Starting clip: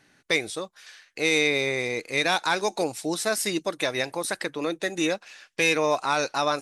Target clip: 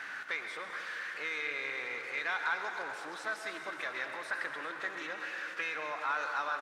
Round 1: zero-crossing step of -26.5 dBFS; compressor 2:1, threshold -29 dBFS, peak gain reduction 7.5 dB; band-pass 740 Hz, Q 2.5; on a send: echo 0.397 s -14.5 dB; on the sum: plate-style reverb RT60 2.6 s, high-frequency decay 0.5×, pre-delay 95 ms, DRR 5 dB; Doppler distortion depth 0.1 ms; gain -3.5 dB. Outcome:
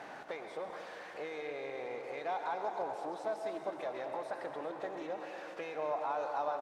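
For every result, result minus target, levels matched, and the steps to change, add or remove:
2000 Hz band -10.5 dB; compressor: peak gain reduction +3 dB
change: band-pass 1500 Hz, Q 2.5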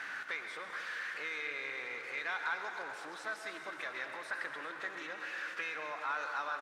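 compressor: peak gain reduction +3 dB
change: compressor 2:1, threshold -22.5 dBFS, peak gain reduction 4 dB

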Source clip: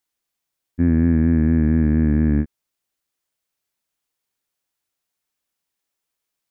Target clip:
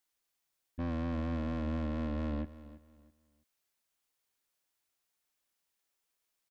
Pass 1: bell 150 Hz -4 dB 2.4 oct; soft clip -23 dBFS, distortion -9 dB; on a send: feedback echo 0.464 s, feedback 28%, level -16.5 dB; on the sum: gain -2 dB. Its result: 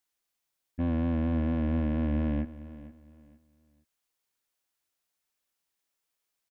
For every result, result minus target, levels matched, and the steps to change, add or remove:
echo 0.136 s late; soft clip: distortion -4 dB
change: feedback echo 0.328 s, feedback 28%, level -16.5 dB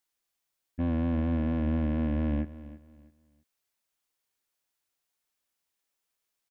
soft clip: distortion -4 dB
change: soft clip -31.5 dBFS, distortion -5 dB

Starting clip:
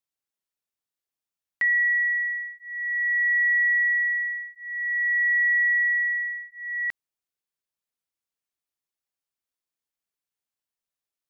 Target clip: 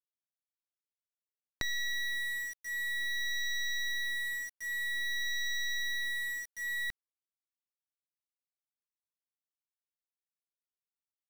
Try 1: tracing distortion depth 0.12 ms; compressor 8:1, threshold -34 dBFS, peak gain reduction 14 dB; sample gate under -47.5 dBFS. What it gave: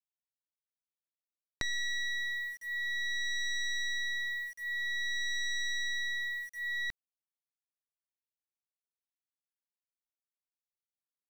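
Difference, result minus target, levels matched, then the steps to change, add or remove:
sample gate: distortion -12 dB
change: sample gate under -39.5 dBFS

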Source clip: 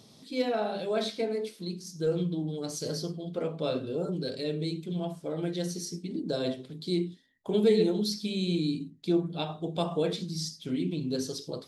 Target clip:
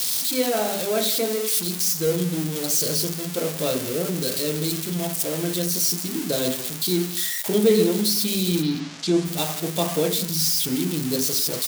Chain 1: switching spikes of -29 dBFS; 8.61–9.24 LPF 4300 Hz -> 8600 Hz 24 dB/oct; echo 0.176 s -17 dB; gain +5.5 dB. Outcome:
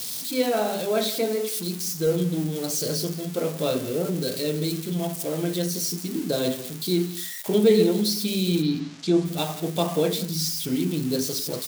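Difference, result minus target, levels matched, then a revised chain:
switching spikes: distortion -8 dB
switching spikes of -21 dBFS; 8.61–9.24 LPF 4300 Hz -> 8600 Hz 24 dB/oct; echo 0.176 s -17 dB; gain +5.5 dB

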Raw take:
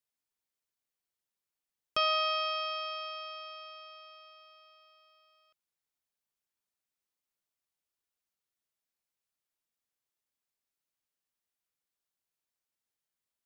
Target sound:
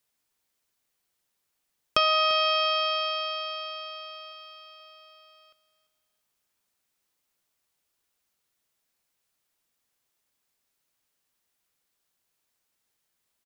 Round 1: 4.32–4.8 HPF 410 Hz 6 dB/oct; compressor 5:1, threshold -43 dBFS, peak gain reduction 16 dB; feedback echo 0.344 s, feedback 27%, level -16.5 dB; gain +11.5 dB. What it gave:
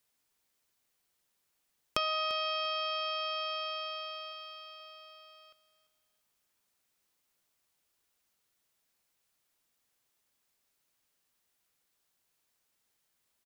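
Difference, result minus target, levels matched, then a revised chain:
compressor: peak gain reduction +9.5 dB
4.32–4.8 HPF 410 Hz 6 dB/oct; compressor 5:1, threshold -31 dBFS, peak gain reduction 6.5 dB; feedback echo 0.344 s, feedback 27%, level -16.5 dB; gain +11.5 dB

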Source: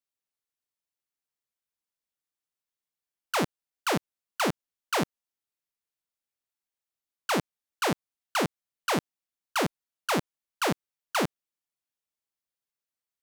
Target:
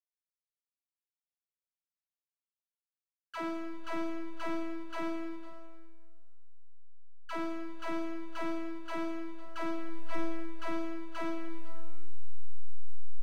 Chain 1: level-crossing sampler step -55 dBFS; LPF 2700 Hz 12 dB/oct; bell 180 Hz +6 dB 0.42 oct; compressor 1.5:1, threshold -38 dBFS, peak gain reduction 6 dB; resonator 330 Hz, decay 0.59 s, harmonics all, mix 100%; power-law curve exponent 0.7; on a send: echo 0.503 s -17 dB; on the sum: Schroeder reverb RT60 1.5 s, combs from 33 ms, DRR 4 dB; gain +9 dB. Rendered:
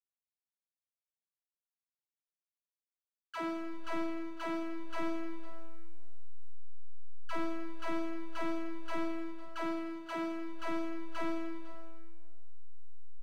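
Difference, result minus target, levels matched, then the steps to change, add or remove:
level-crossing sampler: distortion -10 dB
change: level-crossing sampler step -44.5 dBFS

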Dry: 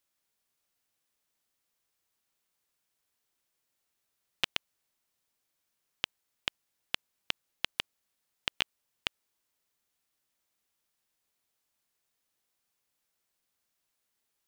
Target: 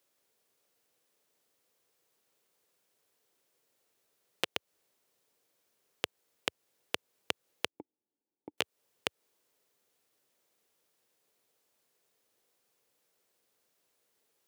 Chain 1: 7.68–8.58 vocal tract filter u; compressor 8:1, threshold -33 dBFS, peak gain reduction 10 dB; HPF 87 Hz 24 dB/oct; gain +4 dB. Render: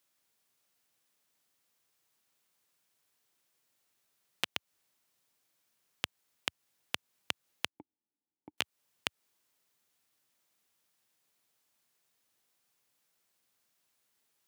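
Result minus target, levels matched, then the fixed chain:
500 Hz band -8.0 dB
7.68–8.58 vocal tract filter u; compressor 8:1, threshold -33 dBFS, peak gain reduction 10 dB; HPF 87 Hz 24 dB/oct; bell 460 Hz +11 dB 1 oct; gain +4 dB

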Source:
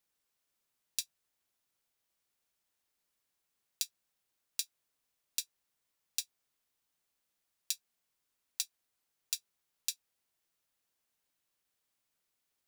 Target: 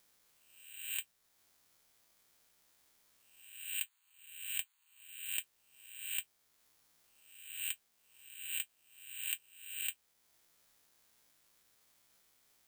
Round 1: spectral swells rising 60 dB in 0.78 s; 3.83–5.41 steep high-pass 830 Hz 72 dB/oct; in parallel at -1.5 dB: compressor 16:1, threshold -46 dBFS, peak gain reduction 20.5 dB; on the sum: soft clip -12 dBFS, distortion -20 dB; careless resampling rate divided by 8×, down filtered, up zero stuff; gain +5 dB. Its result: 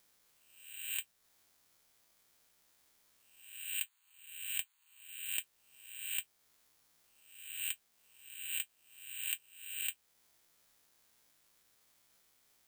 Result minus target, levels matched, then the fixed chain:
compressor: peak gain reduction -9 dB
spectral swells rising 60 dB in 0.78 s; 3.83–5.41 steep high-pass 830 Hz 72 dB/oct; in parallel at -1.5 dB: compressor 16:1, threshold -55.5 dBFS, peak gain reduction 29.5 dB; on the sum: soft clip -12 dBFS, distortion -20 dB; careless resampling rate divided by 8×, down filtered, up zero stuff; gain +5 dB

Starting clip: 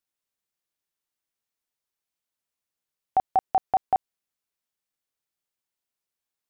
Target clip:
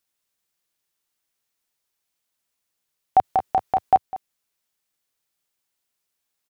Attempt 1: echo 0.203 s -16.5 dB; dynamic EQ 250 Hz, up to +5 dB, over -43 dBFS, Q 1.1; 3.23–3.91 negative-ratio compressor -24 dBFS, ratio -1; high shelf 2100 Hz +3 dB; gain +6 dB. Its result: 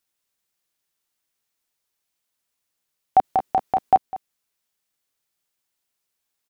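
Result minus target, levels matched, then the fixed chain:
250 Hz band +2.5 dB
echo 0.203 s -16.5 dB; dynamic EQ 100 Hz, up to +5 dB, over -43 dBFS, Q 1.1; 3.23–3.91 negative-ratio compressor -24 dBFS, ratio -1; high shelf 2100 Hz +3 dB; gain +6 dB

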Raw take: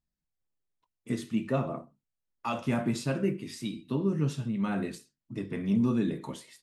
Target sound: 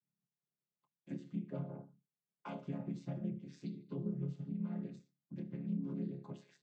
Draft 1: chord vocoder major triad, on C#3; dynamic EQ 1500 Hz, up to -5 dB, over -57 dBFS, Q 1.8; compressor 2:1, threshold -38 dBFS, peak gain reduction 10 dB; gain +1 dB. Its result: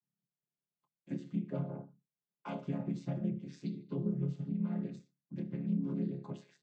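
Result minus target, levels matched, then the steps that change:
compressor: peak gain reduction -5 dB
change: compressor 2:1, threshold -47.5 dBFS, peak gain reduction 15 dB

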